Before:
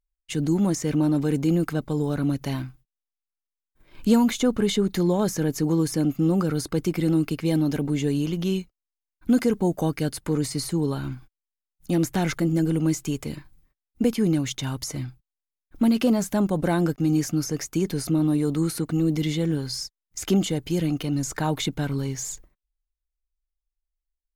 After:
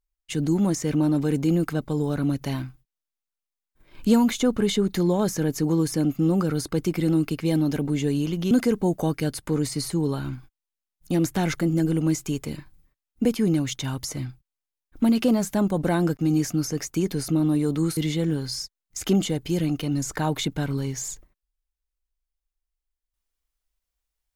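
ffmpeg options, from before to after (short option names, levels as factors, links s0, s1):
-filter_complex "[0:a]asplit=3[s0][s1][s2];[s0]atrim=end=8.512[s3];[s1]atrim=start=9.298:end=18.762[s4];[s2]atrim=start=19.178[s5];[s3][s4]acrossfade=d=0.004:c1=hsin:c2=hsin[s6];[s6][s5]acrossfade=d=0.004:c1=hsin:c2=hsin"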